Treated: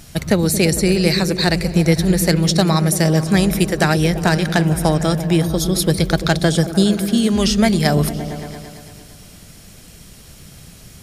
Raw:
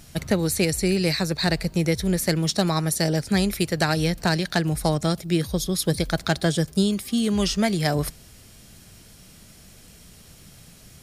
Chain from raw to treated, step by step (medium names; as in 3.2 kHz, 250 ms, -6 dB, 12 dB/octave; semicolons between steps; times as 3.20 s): 2.91–5.51 s: band-stop 4.3 kHz, Q 5.8; delay with an opening low-pass 113 ms, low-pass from 200 Hz, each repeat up 1 oct, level -6 dB; trim +6 dB